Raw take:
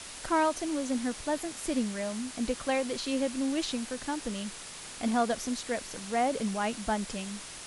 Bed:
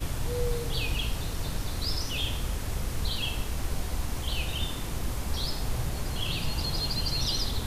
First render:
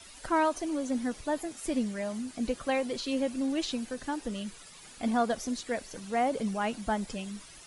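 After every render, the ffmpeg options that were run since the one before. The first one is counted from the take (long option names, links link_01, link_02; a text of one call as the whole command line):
ffmpeg -i in.wav -af "afftdn=noise_reduction=12:noise_floor=-44" out.wav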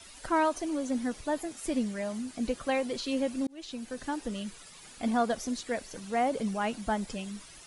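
ffmpeg -i in.wav -filter_complex "[0:a]asplit=2[link_01][link_02];[link_01]atrim=end=3.47,asetpts=PTS-STARTPTS,afade=type=out:start_time=3.466:duration=0.004:curve=hsin[link_03];[link_02]atrim=start=3.47,asetpts=PTS-STARTPTS,afade=type=in:duration=0.55[link_04];[link_03][link_04]concat=n=2:v=0:a=1" out.wav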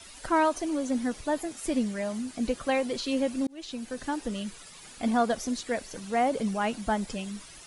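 ffmpeg -i in.wav -af "volume=2.5dB" out.wav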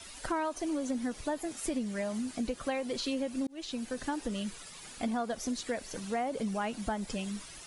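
ffmpeg -i in.wav -af "acompressor=threshold=-30dB:ratio=6" out.wav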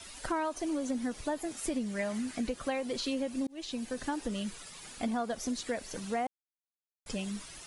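ffmpeg -i in.wav -filter_complex "[0:a]asettb=1/sr,asplit=3[link_01][link_02][link_03];[link_01]atrim=end=1.994[link_04];[link_02]atrim=start=1.99:end=2.49,asetpts=PTS-STARTPTS,afade=type=in:duration=0.004:curve=qsin,afade=type=out:start_time=0.496:duration=0.004:curve=qsin,equalizer=frequency=1900:width=1.6:gain=6.5[link_05];[link_03]atrim=start=2.486[link_06];[link_04][link_05]acrossfade=duration=0.004:curve1=hsin:curve2=qsin[link_07];[link_07][link_06]acrossfade=duration=0.004:curve1=qsin:curve2=hsin,asettb=1/sr,asplit=3[link_08][link_09][link_10];[link_08]atrim=end=3.344[link_11];[link_09]atrim=start=3.34:end=3.95,asetpts=PTS-STARTPTS,afade=type=in:duration=0.004:curve=qsin,afade=type=out:start_time=0.606:duration=0.004:curve=qsin,bandreject=frequency=1400:width=8.4[link_12];[link_10]atrim=start=3.946[link_13];[link_11][link_12]acrossfade=duration=0.004:curve1=hsin:curve2=qsin[link_14];[link_14][link_13]acrossfade=duration=0.004:curve1=qsin:curve2=hsin,asplit=3[link_15][link_16][link_17];[link_15]atrim=end=6.27,asetpts=PTS-STARTPTS,afade=type=out:start_time=6.266:duration=0.004:curve=hsin[link_18];[link_16]atrim=start=6.27:end=7.06,asetpts=PTS-STARTPTS,volume=0[link_19];[link_17]atrim=start=7.06,asetpts=PTS-STARTPTS,afade=type=in:duration=0.004:curve=hsin[link_20];[link_18][link_19][link_20]concat=n=3:v=0:a=1" out.wav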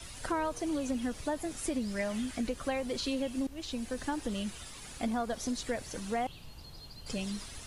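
ffmpeg -i in.wav -i bed.wav -filter_complex "[1:a]volume=-19.5dB[link_01];[0:a][link_01]amix=inputs=2:normalize=0" out.wav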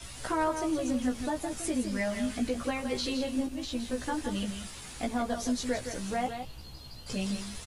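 ffmpeg -i in.wav -filter_complex "[0:a]asplit=2[link_01][link_02];[link_02]adelay=16,volume=-2.5dB[link_03];[link_01][link_03]amix=inputs=2:normalize=0,aecho=1:1:164:0.398" out.wav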